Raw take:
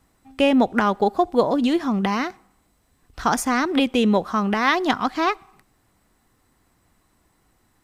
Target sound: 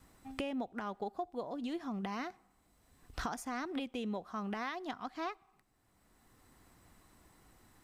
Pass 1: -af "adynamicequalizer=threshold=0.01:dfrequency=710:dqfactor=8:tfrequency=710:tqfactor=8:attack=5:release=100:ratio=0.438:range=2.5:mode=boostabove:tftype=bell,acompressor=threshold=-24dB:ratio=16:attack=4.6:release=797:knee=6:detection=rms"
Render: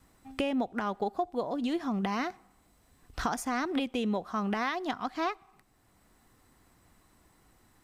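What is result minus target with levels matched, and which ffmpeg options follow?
downward compressor: peak gain reduction −8 dB
-af "adynamicequalizer=threshold=0.01:dfrequency=710:dqfactor=8:tfrequency=710:tqfactor=8:attack=5:release=100:ratio=0.438:range=2.5:mode=boostabove:tftype=bell,acompressor=threshold=-32.5dB:ratio=16:attack=4.6:release=797:knee=6:detection=rms"

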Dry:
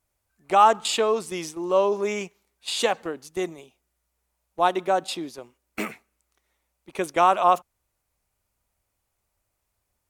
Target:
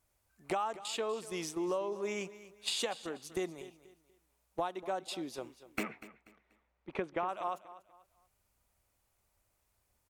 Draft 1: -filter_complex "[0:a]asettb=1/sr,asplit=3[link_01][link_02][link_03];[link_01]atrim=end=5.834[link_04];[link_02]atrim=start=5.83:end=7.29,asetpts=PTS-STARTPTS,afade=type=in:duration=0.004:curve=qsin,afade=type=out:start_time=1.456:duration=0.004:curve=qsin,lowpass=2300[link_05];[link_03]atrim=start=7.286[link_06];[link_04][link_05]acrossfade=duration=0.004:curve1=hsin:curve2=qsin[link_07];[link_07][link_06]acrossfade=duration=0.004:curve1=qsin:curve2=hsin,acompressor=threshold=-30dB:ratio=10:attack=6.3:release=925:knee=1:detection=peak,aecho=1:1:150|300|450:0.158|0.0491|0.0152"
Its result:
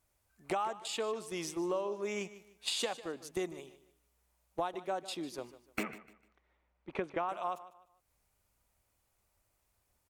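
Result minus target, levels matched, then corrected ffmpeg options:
echo 92 ms early
-filter_complex "[0:a]asettb=1/sr,asplit=3[link_01][link_02][link_03];[link_01]atrim=end=5.834[link_04];[link_02]atrim=start=5.83:end=7.29,asetpts=PTS-STARTPTS,afade=type=in:duration=0.004:curve=qsin,afade=type=out:start_time=1.456:duration=0.004:curve=qsin,lowpass=2300[link_05];[link_03]atrim=start=7.286[link_06];[link_04][link_05]acrossfade=duration=0.004:curve1=hsin:curve2=qsin[link_07];[link_07][link_06]acrossfade=duration=0.004:curve1=qsin:curve2=hsin,acompressor=threshold=-30dB:ratio=10:attack=6.3:release=925:knee=1:detection=peak,aecho=1:1:242|484|726:0.158|0.0491|0.0152"

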